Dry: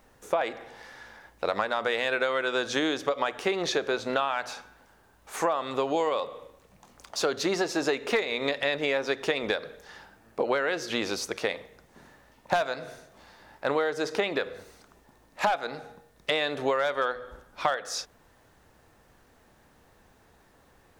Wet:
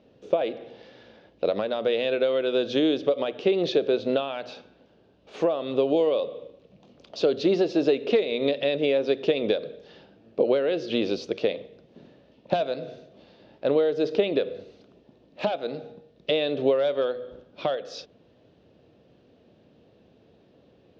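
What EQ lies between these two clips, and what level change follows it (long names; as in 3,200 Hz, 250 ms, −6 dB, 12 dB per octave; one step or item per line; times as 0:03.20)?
band-pass filter 130–5,700 Hz
high-frequency loss of the air 260 metres
flat-topped bell 1,300 Hz −15.5 dB
+7.0 dB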